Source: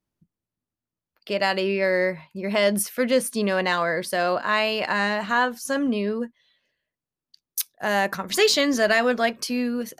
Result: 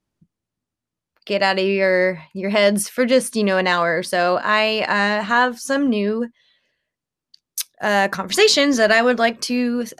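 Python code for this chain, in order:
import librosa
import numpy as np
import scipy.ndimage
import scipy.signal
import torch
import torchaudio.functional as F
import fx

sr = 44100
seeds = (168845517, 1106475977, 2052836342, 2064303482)

y = scipy.signal.sosfilt(scipy.signal.butter(2, 9900.0, 'lowpass', fs=sr, output='sos'), x)
y = F.gain(torch.from_numpy(y), 5.0).numpy()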